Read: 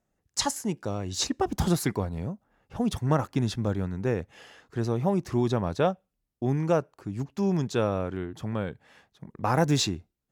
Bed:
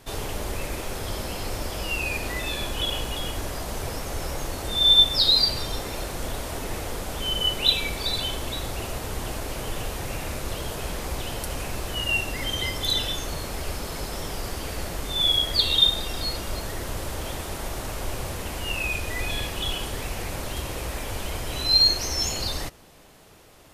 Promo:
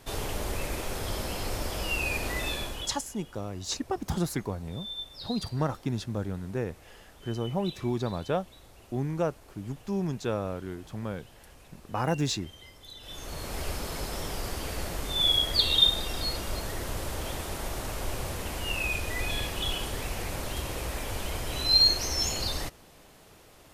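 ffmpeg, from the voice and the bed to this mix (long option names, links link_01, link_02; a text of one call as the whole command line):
ffmpeg -i stem1.wav -i stem2.wav -filter_complex "[0:a]adelay=2500,volume=-4.5dB[link_01];[1:a]volume=18dB,afade=type=out:start_time=2.46:duration=0.54:silence=0.0944061,afade=type=in:start_time=13:duration=0.6:silence=0.1[link_02];[link_01][link_02]amix=inputs=2:normalize=0" out.wav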